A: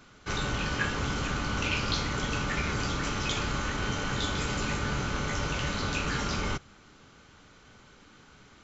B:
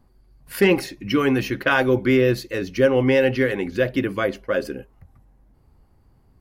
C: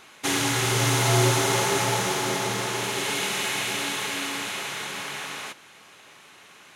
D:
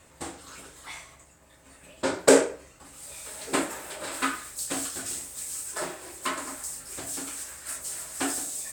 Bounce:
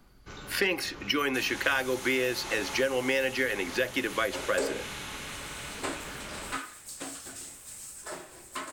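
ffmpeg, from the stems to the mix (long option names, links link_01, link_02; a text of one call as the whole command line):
ffmpeg -i stem1.wav -i stem2.wav -i stem3.wav -i stem4.wav -filter_complex "[0:a]lowshelf=frequency=260:gain=11.5,volume=-13.5dB[link_01];[1:a]tiltshelf=frequency=970:gain=-5.5,volume=2dB[link_02];[2:a]highpass=570,asoftclip=type=tanh:threshold=-16.5dB,adelay=1100,volume=-11dB[link_03];[3:a]adelay=2300,volume=-7dB[link_04];[link_01][link_02][link_03][link_04]amix=inputs=4:normalize=0,acrossover=split=250|6700[link_05][link_06][link_07];[link_05]acompressor=threshold=-50dB:ratio=4[link_08];[link_06]acompressor=threshold=-26dB:ratio=4[link_09];[link_07]acompressor=threshold=-44dB:ratio=4[link_10];[link_08][link_09][link_10]amix=inputs=3:normalize=0" out.wav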